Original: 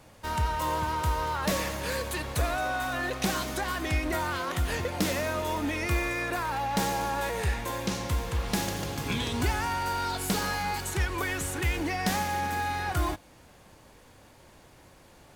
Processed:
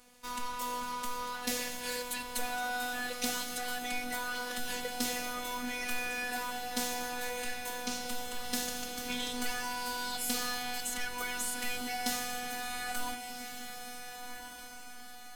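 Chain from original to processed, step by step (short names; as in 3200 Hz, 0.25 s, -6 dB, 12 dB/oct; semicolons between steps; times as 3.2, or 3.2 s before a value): high shelf 2400 Hz +9.5 dB; robotiser 246 Hz; diffused feedback echo 1.454 s, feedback 46%, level -8 dB; gain -7 dB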